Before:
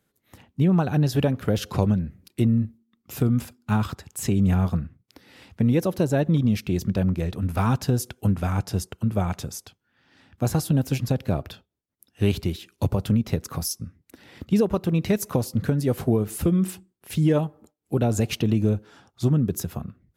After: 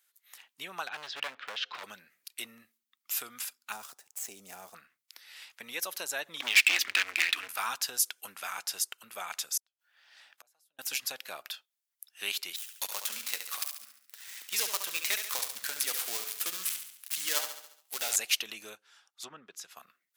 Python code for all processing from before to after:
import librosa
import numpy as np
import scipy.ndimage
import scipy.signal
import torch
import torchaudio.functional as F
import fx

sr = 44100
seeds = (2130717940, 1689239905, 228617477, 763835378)

y = fx.chain(x, sr, fx.lowpass(hz=3700.0, slope=24),
    fx.overload_stage(gain_db=21.5), at=(0.87, 1.84))
y = fx.chain(y, sr, fx.median_filter(points=9),
    fx.band_shelf(hz=2000.0, db=-12.0, octaves=2.3), at=(3.72, 4.75))
y = fx.chain(y, sr, fx.curve_eq(hz=(110.0, 150.0, 300.0, 500.0, 1500.0, 2300.0, 3600.0, 6900.0), db=(0, -26, 6, -17, 6, 12, 4, -11)),
    fx.leveller(passes=3), at=(6.4, 7.48))
y = fx.chain(y, sr, fx.peak_eq(hz=630.0, db=10.0, octaves=0.8),
    fx.gate_flip(shuts_db=-27.0, range_db=-41), at=(9.57, 10.79))
y = fx.chain(y, sr, fx.dead_time(dead_ms=0.12),
    fx.tilt_eq(slope=2.0),
    fx.echo_feedback(ms=70, feedback_pct=51, wet_db=-8), at=(12.56, 18.16))
y = fx.chain(y, sr, fx.env_lowpass_down(base_hz=2000.0, full_db=-16.5),
    fx.upward_expand(threshold_db=-32.0, expansion=1.5), at=(18.75, 19.77))
y = scipy.signal.sosfilt(scipy.signal.butter(2, 1400.0, 'highpass', fs=sr, output='sos'), y)
y = fx.tilt_eq(y, sr, slope=2.0)